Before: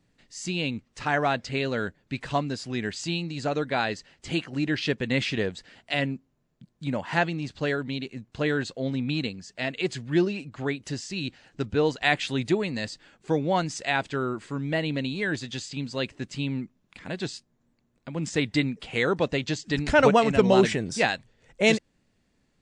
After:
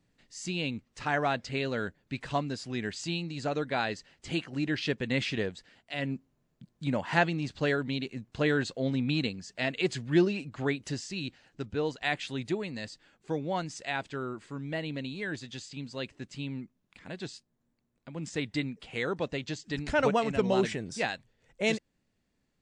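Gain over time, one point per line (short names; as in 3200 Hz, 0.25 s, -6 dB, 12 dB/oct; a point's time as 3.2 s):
5.4 s -4 dB
5.93 s -10.5 dB
6.14 s -1 dB
10.77 s -1 dB
11.6 s -7.5 dB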